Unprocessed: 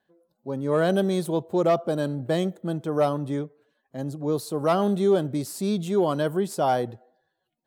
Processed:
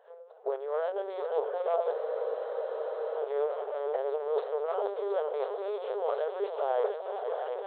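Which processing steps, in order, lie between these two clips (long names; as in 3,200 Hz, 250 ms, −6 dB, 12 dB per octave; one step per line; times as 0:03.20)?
compressor on every frequency bin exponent 0.6
camcorder AGC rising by 32 dB per second
noise gate −25 dBFS, range −11 dB
shaped tremolo triangle 3 Hz, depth 60%
reversed playback
downward compressor 20 to 1, threshold −30 dBFS, peak gain reduction 16 dB
reversed playback
tilt shelving filter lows +7.5 dB, about 1,400 Hz
echo machine with several playback heads 238 ms, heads second and third, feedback 65%, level −7 dB
linear-prediction vocoder at 8 kHz pitch kept
linear-phase brick-wall high-pass 400 Hz
frozen spectrum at 0:01.95, 1.23 s
level +1.5 dB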